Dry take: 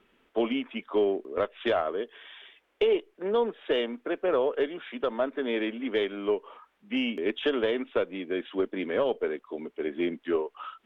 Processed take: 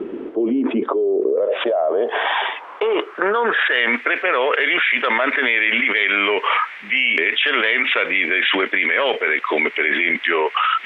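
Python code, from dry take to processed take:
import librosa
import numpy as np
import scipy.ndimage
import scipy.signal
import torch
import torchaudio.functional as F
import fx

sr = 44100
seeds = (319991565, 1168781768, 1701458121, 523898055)

y = fx.filter_sweep_bandpass(x, sr, from_hz=340.0, to_hz=2100.0, start_s=0.7, end_s=4.03, q=3.9)
y = fx.env_flatten(y, sr, amount_pct=100)
y = F.gain(torch.from_numpy(y), 5.0).numpy()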